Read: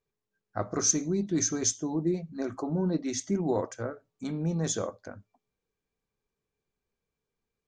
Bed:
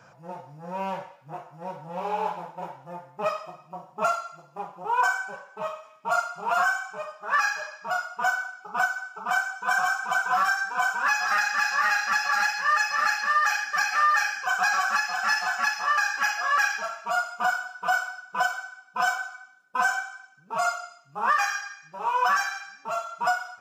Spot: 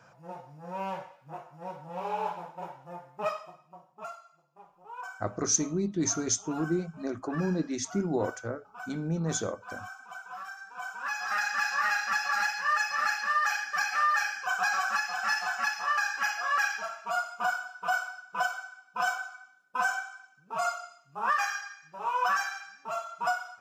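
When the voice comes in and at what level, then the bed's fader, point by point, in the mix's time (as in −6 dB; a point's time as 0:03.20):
4.65 s, −1.0 dB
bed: 0:03.28 −4 dB
0:04.17 −18.5 dB
0:10.54 −18.5 dB
0:11.47 −4.5 dB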